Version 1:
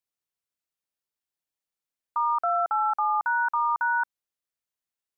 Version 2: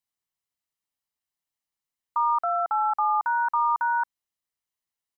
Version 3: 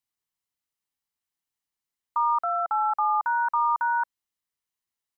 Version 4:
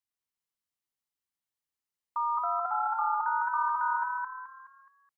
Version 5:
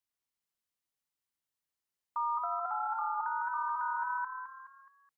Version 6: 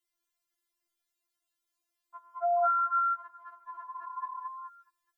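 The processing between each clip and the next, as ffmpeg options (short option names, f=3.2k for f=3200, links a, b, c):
-af "aecho=1:1:1:0.33"
-af "equalizer=f=610:w=5.1:g=-6"
-filter_complex "[0:a]asplit=6[a][b][c][d][e][f];[b]adelay=211,afreqshift=36,volume=-3dB[g];[c]adelay=422,afreqshift=72,volume=-11.2dB[h];[d]adelay=633,afreqshift=108,volume=-19.4dB[i];[e]adelay=844,afreqshift=144,volume=-27.5dB[j];[f]adelay=1055,afreqshift=180,volume=-35.7dB[k];[a][g][h][i][j][k]amix=inputs=6:normalize=0,volume=-6.5dB"
-af "alimiter=level_in=2dB:limit=-24dB:level=0:latency=1:release=115,volume=-2dB"
-af "afftfilt=real='re*4*eq(mod(b,16),0)':imag='im*4*eq(mod(b,16),0)':win_size=2048:overlap=0.75,volume=7dB"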